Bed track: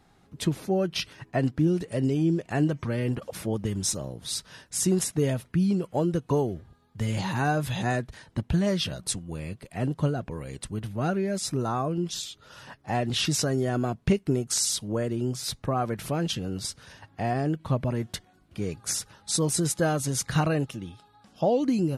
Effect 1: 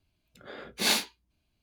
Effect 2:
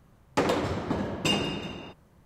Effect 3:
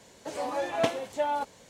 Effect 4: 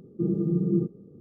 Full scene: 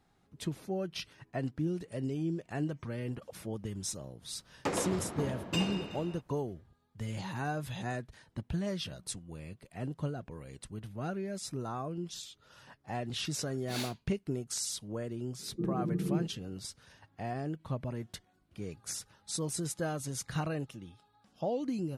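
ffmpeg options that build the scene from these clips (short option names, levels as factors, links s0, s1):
-filter_complex "[0:a]volume=0.316[s0];[2:a]atrim=end=2.25,asetpts=PTS-STARTPTS,volume=0.398,afade=t=in:d=0.004:c=hsin,afade=t=out:st=2.246:d=0.004:c=hsin,adelay=4280[s1];[1:a]atrim=end=1.62,asetpts=PTS-STARTPTS,volume=0.188,afade=t=in:d=0.004:c=hsin,afade=t=out:st=1.616:d=0.004:c=hsin,adelay=12890[s2];[4:a]atrim=end=1.2,asetpts=PTS-STARTPTS,volume=0.398,afade=t=in:d=0.004:c=hsin,afade=t=out:st=1.196:d=0.004:c=hsin,adelay=15390[s3];[s0][s1][s2][s3]amix=inputs=4:normalize=0"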